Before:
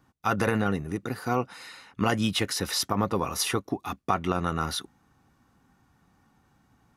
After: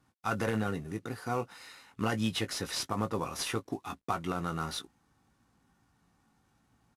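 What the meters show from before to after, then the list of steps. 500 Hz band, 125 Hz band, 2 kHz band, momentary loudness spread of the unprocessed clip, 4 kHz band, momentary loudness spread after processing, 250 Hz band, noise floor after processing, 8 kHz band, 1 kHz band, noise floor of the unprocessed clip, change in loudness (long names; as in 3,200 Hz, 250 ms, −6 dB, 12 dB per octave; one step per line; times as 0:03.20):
−6.0 dB, −5.5 dB, −6.0 dB, 8 LU, −6.5 dB, 8 LU, −6.0 dB, −73 dBFS, −7.0 dB, −6.5 dB, −66 dBFS, −6.0 dB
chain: variable-slope delta modulation 64 kbit/s
double-tracking delay 18 ms −9 dB
level −6.5 dB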